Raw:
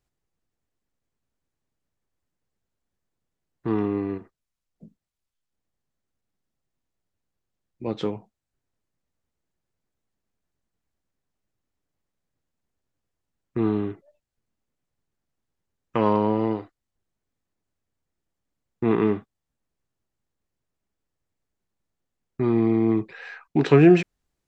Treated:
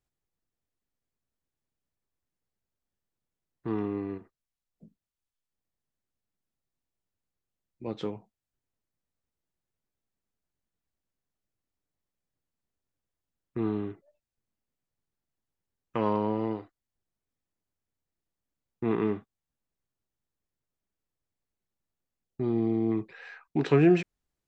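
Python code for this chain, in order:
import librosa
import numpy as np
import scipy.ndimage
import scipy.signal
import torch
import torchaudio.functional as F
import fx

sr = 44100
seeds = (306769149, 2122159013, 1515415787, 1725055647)

y = fx.spec_box(x, sr, start_s=22.24, length_s=0.67, low_hz=850.0, high_hz=2700.0, gain_db=-7)
y = y * 10.0 ** (-6.5 / 20.0)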